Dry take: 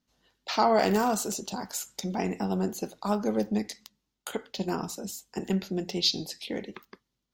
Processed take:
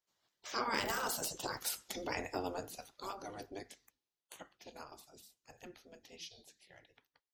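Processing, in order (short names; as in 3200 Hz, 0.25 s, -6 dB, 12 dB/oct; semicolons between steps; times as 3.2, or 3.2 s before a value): Doppler pass-by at 1.66, 23 m/s, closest 13 m; spectral gate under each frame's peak -10 dB weak; gain +2 dB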